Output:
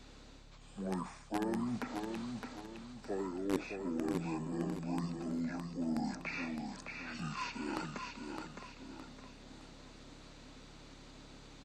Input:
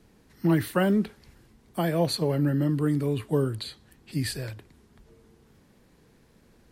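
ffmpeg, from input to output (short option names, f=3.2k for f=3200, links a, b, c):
-filter_complex "[0:a]highpass=f=420:w=0.5412,highpass=f=420:w=1.3066,acrossover=split=2700[a][b];[b]acompressor=threshold=-52dB:ratio=4:attack=1:release=60[c];[a][c]amix=inputs=2:normalize=0,superequalizer=11b=0.708:15b=2,areverse,acompressor=threshold=-45dB:ratio=5,areverse,aeval=exprs='val(0)+0.000631*(sin(2*PI*60*n/s)+sin(2*PI*2*60*n/s)/2+sin(2*PI*3*60*n/s)/3+sin(2*PI*4*60*n/s)/4+sin(2*PI*5*60*n/s)/5)':c=same,asplit=2[d][e];[e]acrusher=bits=5:mix=0:aa=0.000001,volume=-5.5dB[f];[d][f]amix=inputs=2:normalize=0,aecho=1:1:354|708|1062|1416|1770:0.562|0.214|0.0812|0.0309|0.0117,asetrate=25442,aresample=44100,volume=7.5dB"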